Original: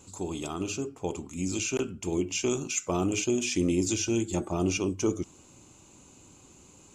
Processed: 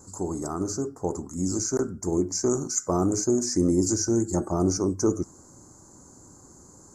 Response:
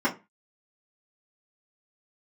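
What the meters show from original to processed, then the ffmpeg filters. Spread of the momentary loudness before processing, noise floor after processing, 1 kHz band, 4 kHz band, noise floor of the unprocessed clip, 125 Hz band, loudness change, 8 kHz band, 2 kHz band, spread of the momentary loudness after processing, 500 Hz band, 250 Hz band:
8 LU, −52 dBFS, +4.0 dB, −1.5 dB, −56 dBFS, +4.0 dB, +3.5 dB, +4.0 dB, −11.0 dB, 8 LU, +4.0 dB, +4.0 dB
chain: -af "asuperstop=centerf=2900:order=8:qfactor=1,volume=4dB"

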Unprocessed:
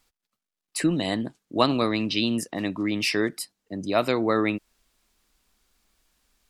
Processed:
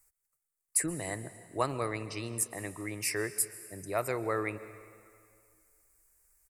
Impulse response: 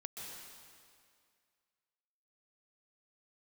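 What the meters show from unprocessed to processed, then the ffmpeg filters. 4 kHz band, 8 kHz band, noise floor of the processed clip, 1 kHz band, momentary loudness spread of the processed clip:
−16.0 dB, +5.0 dB, −85 dBFS, −8.0 dB, 11 LU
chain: -filter_complex "[0:a]firequalizer=gain_entry='entry(120,0);entry(220,-17);entry(400,-3);entry(630,-5);entry(2100,-1);entry(3300,-22);entry(4800,-7);entry(8100,11)':delay=0.05:min_phase=1,asplit=2[link_01][link_02];[1:a]atrim=start_sample=2205[link_03];[link_02][link_03]afir=irnorm=-1:irlink=0,volume=-8dB[link_04];[link_01][link_04]amix=inputs=2:normalize=0,volume=-6dB"

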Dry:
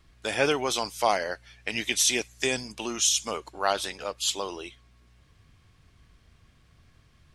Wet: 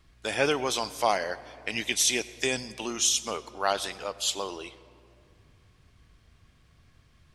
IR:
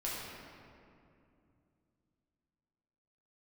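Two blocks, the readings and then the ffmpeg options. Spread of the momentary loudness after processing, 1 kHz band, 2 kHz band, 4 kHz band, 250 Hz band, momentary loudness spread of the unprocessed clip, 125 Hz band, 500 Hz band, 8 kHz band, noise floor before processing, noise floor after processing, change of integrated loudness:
12 LU, −1.0 dB, −1.0 dB, −1.0 dB, −1.0 dB, 12 LU, −1.0 dB, −1.0 dB, −1.0 dB, −61 dBFS, −62 dBFS, −1.0 dB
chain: -filter_complex "[0:a]asplit=2[link_01][link_02];[1:a]atrim=start_sample=2205,adelay=93[link_03];[link_02][link_03]afir=irnorm=-1:irlink=0,volume=-21dB[link_04];[link_01][link_04]amix=inputs=2:normalize=0,volume=-1dB"

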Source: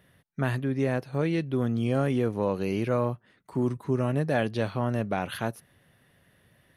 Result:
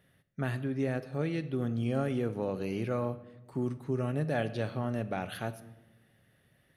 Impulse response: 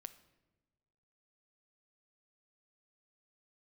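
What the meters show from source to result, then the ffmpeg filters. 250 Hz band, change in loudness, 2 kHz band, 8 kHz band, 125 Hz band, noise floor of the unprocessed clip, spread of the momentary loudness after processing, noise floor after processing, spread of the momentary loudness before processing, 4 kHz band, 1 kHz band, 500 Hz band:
−5.0 dB, −5.5 dB, −5.5 dB, can't be measured, −5.0 dB, −64 dBFS, 7 LU, −69 dBFS, 7 LU, −5.5 dB, −6.5 dB, −5.5 dB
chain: -filter_complex "[0:a]bandreject=frequency=1000:width=8.4[link_01];[1:a]atrim=start_sample=2205,asetrate=42336,aresample=44100[link_02];[link_01][link_02]afir=irnorm=-1:irlink=0"

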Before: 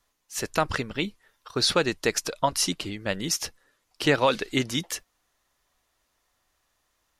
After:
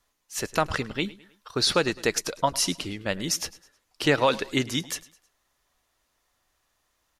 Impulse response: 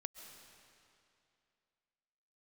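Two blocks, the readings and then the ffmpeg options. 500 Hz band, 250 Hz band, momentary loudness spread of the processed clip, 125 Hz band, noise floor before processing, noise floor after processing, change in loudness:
0.0 dB, 0.0 dB, 12 LU, 0.0 dB, −74 dBFS, −74 dBFS, 0.0 dB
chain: -af "aecho=1:1:105|210|315:0.1|0.041|0.0168"

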